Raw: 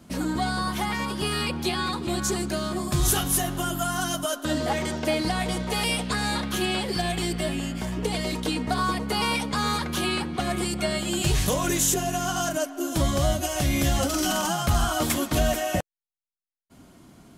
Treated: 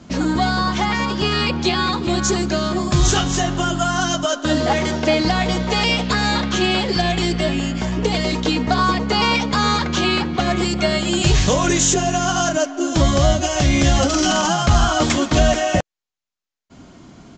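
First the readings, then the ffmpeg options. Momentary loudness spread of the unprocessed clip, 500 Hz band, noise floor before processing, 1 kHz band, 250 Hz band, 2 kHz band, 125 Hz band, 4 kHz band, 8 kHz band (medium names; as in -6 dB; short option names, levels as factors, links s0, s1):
5 LU, +8.0 dB, -72 dBFS, +8.0 dB, +8.0 dB, +8.0 dB, +8.0 dB, +8.0 dB, +5.0 dB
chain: -af "aresample=16000,aresample=44100,volume=2.51"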